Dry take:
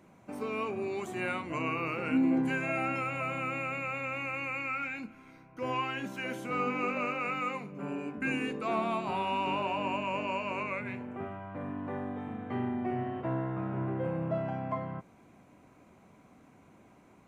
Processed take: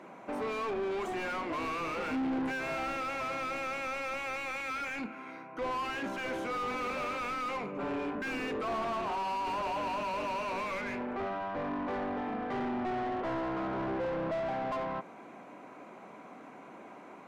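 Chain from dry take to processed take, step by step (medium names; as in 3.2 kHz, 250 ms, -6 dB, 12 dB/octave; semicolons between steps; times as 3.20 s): high-pass 180 Hz 12 dB/octave; overdrive pedal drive 31 dB, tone 1.2 kHz, clips at -17.5 dBFS; trim -8 dB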